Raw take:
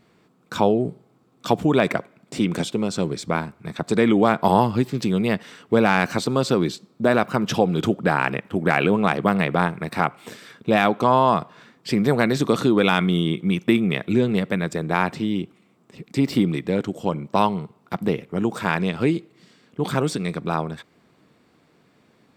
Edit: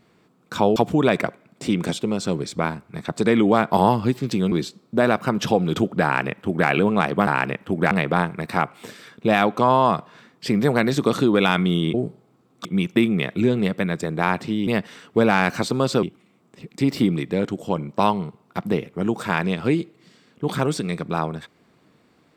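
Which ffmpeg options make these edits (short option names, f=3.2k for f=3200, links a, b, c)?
-filter_complex "[0:a]asplit=9[a][b][c][d][e][f][g][h][i];[a]atrim=end=0.762[j];[b]atrim=start=1.468:end=5.232[k];[c]atrim=start=6.588:end=9.342[l];[d]atrim=start=8.108:end=8.752[m];[e]atrim=start=9.338:end=13.372[n];[f]atrim=start=0.758:end=1.472[o];[g]atrim=start=13.368:end=15.392[p];[h]atrim=start=5.228:end=6.592[q];[i]atrim=start=15.388[r];[j][k]acrossfade=d=0.004:c1=hsin:c2=hsin[s];[s][l]acrossfade=d=0.004:c1=hsin:c2=hsin[t];[t][m]acrossfade=d=0.004:c1=hsin:c2=hsin[u];[u][n]acrossfade=d=0.004:c1=hsin:c2=hsin[v];[v][o]acrossfade=d=0.004:c1=hsin:c2=hsin[w];[w][p]acrossfade=d=0.004:c1=hsin:c2=hsin[x];[x][q]acrossfade=d=0.004:c1=hsin:c2=hsin[y];[y][r]acrossfade=d=0.004:c1=hsin:c2=hsin"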